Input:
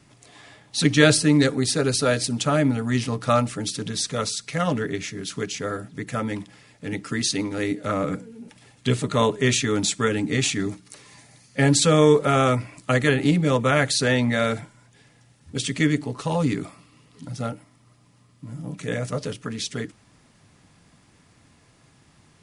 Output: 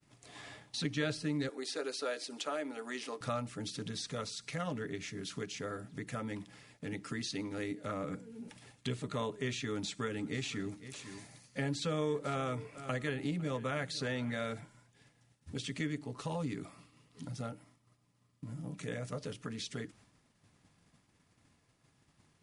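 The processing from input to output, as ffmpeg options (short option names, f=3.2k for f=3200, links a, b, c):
-filter_complex "[0:a]asettb=1/sr,asplit=3[a][b][c];[a]atrim=end=1.494[d];[b]atrim=start=1.49:end=3.21,asetpts=PTS-STARTPTS,afade=t=in:d=0.004:c=qsin,afade=t=out:st=1.716:d=0.004:c=qsin,highpass=f=330:w=0.5412,highpass=f=330:w=1.3066[e];[c]atrim=start=3.206[f];[d][e]acrossfade=d=0.004:c1=hsin:c2=qsin[g];[g][f]acrossfade=d=0.004:c1=qsin:c2=hsin,asettb=1/sr,asplit=3[h][i][j];[h]atrim=end=9.644[k];[i]atrim=start=9.64:end=14.38,asetpts=PTS-STARTPTS,afade=t=in:d=0.004:c=qsin,afade=t=out:st=4.736:d=0.004:c=qsin,aecho=1:1:502:0.106,atrim=end_sample=209034[l];[j]atrim=start=14.376[m];[k][l]acrossfade=d=0.004:c1=hsin:c2=qsin[n];[n][m]acrossfade=d=0.004:c1=qsin:c2=hsin,acrossover=split=5400[o][p];[p]acompressor=threshold=-38dB:ratio=4:attack=1:release=60[q];[o][q]amix=inputs=2:normalize=0,agate=range=-33dB:threshold=-47dB:ratio=3:detection=peak,acompressor=threshold=-44dB:ratio=2,volume=-1.5dB"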